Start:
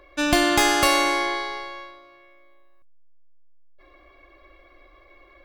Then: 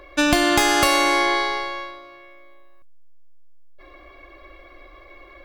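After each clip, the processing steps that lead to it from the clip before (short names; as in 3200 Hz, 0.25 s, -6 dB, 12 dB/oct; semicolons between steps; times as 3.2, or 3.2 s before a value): compressor, threshold -21 dBFS, peak gain reduction 7.5 dB; gain +7 dB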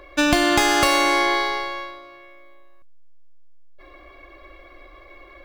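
median filter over 3 samples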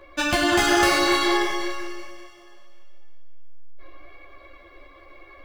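multi-head echo 97 ms, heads all three, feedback 56%, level -12.5 dB; ensemble effect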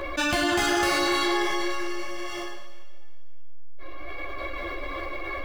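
fast leveller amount 70%; gain -6 dB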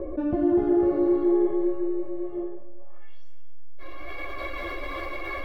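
low-pass sweep 410 Hz -> 14000 Hz, 2.76–3.4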